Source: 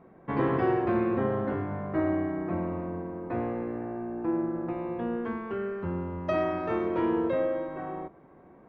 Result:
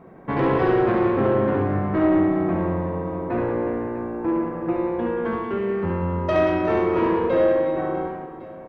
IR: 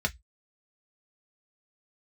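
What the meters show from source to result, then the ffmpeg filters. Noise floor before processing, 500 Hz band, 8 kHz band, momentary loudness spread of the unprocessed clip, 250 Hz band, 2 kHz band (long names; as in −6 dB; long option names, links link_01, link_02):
−55 dBFS, +8.5 dB, can't be measured, 9 LU, +7.0 dB, +8.0 dB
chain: -filter_complex "[0:a]asoftclip=type=tanh:threshold=-23dB,asplit=2[link_01][link_02];[link_02]aecho=0:1:70|182|361.2|647.9|1107:0.631|0.398|0.251|0.158|0.1[link_03];[link_01][link_03]amix=inputs=2:normalize=0,volume=7.5dB"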